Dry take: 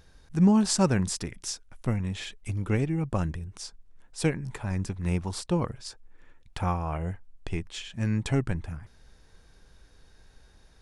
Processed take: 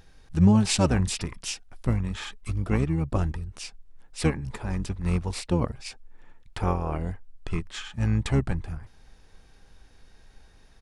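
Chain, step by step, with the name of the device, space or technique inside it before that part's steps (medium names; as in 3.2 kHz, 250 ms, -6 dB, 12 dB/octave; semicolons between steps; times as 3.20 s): octave pedal (harmony voices -12 st -3 dB)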